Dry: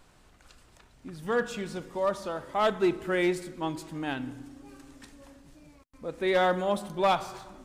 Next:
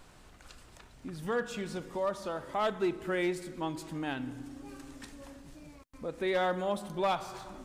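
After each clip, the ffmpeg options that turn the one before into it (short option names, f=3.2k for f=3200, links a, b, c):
-af "acompressor=threshold=-45dB:ratio=1.5,volume=3dB"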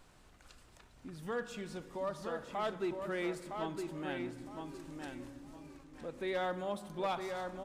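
-filter_complex "[0:a]asplit=2[a][b];[b]adelay=961,lowpass=f=4.3k:p=1,volume=-5dB,asplit=2[c][d];[d]adelay=961,lowpass=f=4.3k:p=1,volume=0.26,asplit=2[e][f];[f]adelay=961,lowpass=f=4.3k:p=1,volume=0.26[g];[a][c][e][g]amix=inputs=4:normalize=0,volume=-6dB"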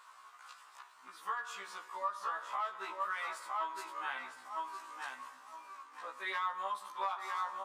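-af "highpass=f=1.1k:t=q:w=5.5,acompressor=threshold=-35dB:ratio=10,afftfilt=real='re*1.73*eq(mod(b,3),0)':imag='im*1.73*eq(mod(b,3),0)':win_size=2048:overlap=0.75,volume=4.5dB"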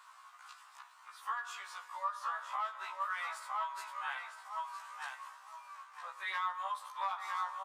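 -af "highpass=f=670:w=0.5412,highpass=f=670:w=1.3066,aecho=1:1:754:0.0891"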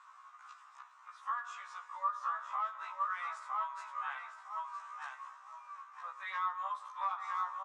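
-af "highpass=f=430:w=0.5412,highpass=f=430:w=1.3066,equalizer=f=1.2k:t=q:w=4:g=7,equalizer=f=3.1k:t=q:w=4:g=-4,equalizer=f=4.5k:t=q:w=4:g=-8,lowpass=f=7.2k:w=0.5412,lowpass=f=7.2k:w=1.3066,volume=-3.5dB"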